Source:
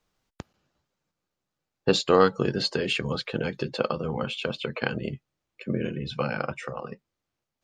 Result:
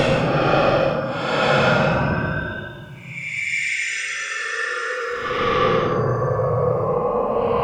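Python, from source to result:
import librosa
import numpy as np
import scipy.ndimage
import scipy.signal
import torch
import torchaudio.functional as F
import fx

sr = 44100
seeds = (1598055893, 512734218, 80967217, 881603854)

p1 = fx.vibrato(x, sr, rate_hz=1.3, depth_cents=86.0)
p2 = fx.harmonic_tremolo(p1, sr, hz=5.3, depth_pct=50, crossover_hz=630.0)
p3 = fx.fold_sine(p2, sr, drive_db=18, ceiling_db=-8.0)
p4 = p2 + F.gain(torch.from_numpy(p3), -4.0).numpy()
p5 = fx.dmg_crackle(p4, sr, seeds[0], per_s=290.0, level_db=-47.0)
y = fx.paulstretch(p5, sr, seeds[1], factor=21.0, window_s=0.05, from_s=6.41)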